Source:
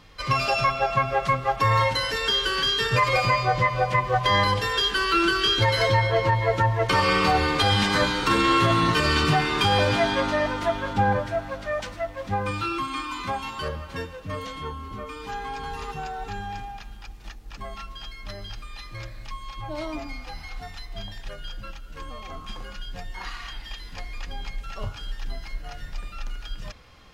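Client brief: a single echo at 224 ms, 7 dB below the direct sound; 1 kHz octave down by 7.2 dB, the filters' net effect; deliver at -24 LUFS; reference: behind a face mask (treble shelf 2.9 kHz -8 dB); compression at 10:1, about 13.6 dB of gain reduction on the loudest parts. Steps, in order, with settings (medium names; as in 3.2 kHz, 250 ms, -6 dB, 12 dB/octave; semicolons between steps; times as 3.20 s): peaking EQ 1 kHz -8 dB; compression 10:1, threshold -32 dBFS; treble shelf 2.9 kHz -8 dB; delay 224 ms -7 dB; trim +13.5 dB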